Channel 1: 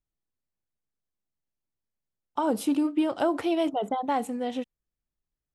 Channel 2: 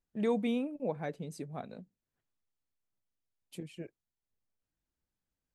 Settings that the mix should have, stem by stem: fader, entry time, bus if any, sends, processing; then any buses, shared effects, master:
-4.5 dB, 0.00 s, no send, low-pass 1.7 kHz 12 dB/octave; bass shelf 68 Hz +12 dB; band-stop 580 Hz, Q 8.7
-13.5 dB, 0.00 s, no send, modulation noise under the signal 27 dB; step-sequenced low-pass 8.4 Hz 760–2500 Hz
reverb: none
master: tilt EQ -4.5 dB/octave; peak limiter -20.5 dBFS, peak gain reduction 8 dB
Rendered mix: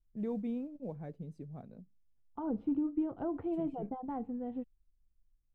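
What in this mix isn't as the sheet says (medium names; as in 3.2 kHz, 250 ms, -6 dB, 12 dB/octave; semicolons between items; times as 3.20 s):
stem 1 -4.5 dB -> -16.0 dB; stem 2: missing step-sequenced low-pass 8.4 Hz 760–2500 Hz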